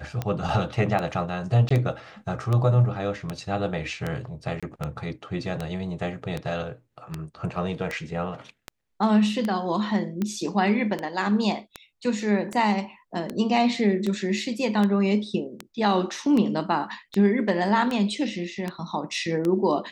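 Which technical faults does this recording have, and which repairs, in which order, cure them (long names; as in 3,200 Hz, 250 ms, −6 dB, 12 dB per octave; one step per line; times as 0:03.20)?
scratch tick 78 rpm −15 dBFS
0:01.69–0:01.71: drop-out 15 ms
0:04.60–0:04.63: drop-out 26 ms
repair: click removal
repair the gap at 0:01.69, 15 ms
repair the gap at 0:04.60, 26 ms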